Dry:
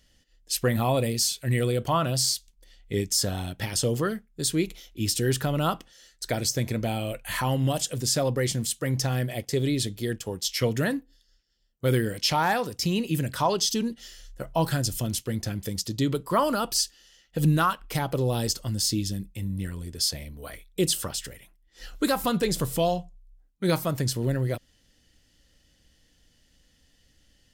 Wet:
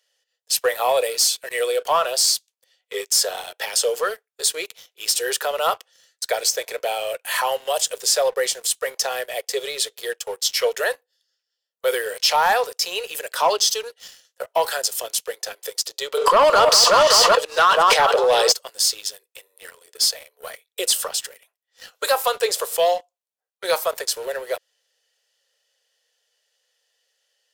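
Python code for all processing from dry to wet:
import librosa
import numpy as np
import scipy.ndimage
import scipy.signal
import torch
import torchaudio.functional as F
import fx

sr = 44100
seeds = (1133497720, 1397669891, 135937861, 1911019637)

y = fx.chain(x, sr, fx.lowpass(hz=5700.0, slope=12),
    fx.echo_alternate(ms=191, hz=1100.0, feedback_pct=63, wet_db=-11.0),
    fx.env_flatten(amount_pct=100), at=(16.17, 18.52))
y = scipy.signal.sosfilt(scipy.signal.butter(12, 430.0, 'highpass', fs=sr, output='sos'), y)
y = fx.notch(y, sr, hz=2100.0, q=18.0)
y = fx.leveller(y, sr, passes=2)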